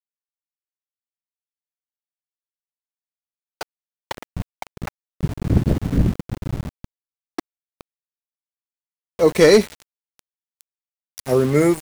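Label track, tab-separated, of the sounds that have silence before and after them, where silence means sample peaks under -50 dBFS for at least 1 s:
3.610000	7.810000	sound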